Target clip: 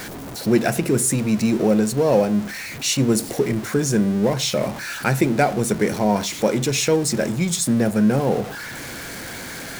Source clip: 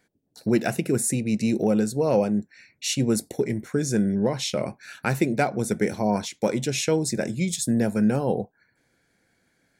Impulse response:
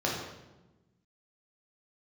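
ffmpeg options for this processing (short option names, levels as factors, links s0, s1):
-filter_complex "[0:a]aeval=exprs='val(0)+0.5*0.0299*sgn(val(0))':c=same,asplit=2[s0][s1];[1:a]atrim=start_sample=2205,afade=t=out:st=0.18:d=0.01,atrim=end_sample=8379[s2];[s1][s2]afir=irnorm=-1:irlink=0,volume=0.0562[s3];[s0][s3]amix=inputs=2:normalize=0,volume=1.41"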